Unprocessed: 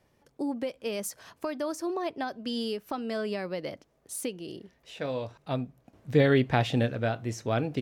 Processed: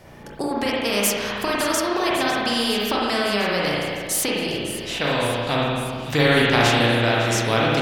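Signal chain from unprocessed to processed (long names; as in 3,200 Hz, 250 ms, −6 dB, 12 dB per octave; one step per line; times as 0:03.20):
delay with a high-pass on its return 555 ms, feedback 70%, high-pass 3,000 Hz, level −16 dB
spring reverb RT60 1.2 s, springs 34/54 ms, chirp 60 ms, DRR −5 dB
every bin compressed towards the loudest bin 2 to 1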